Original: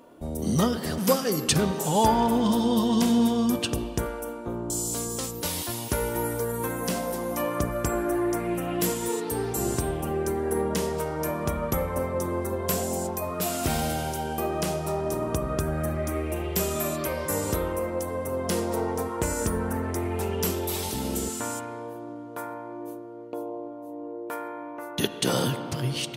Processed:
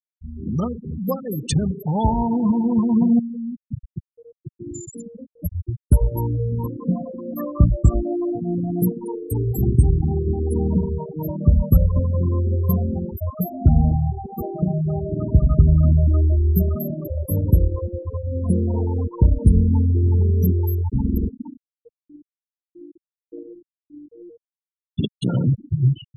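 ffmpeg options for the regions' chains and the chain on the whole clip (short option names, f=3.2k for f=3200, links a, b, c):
-filter_complex "[0:a]asettb=1/sr,asplit=3[a][b][c];[a]atrim=end=3.194[d];[b]atrim=start=3.19:end=4.61,asetpts=PTS-STARTPTS,afade=t=in:d=0.004:c=qsin,afade=t=out:st=1.416:d=0.004:c=qsin,lowpass=5.9k,equalizer=f=140:w=4.3:g=10.5,acompressor=threshold=-31dB:ratio=16:attack=3.2:release=140:knee=1:detection=peak[e];[c]atrim=start=4.606[f];[d][e]acrossfade=d=0.004:c1=hsin:c2=qsin[g];[g][f]acrossfade=d=0.004:c1=qsin:c2=hsin,afftfilt=real='re*gte(hypot(re,im),0.141)':imag='im*gte(hypot(re,im),0.141)':win_size=1024:overlap=0.75,asubboost=boost=7.5:cutoff=170,dynaudnorm=f=360:g=17:m=11.5dB,volume=-1dB"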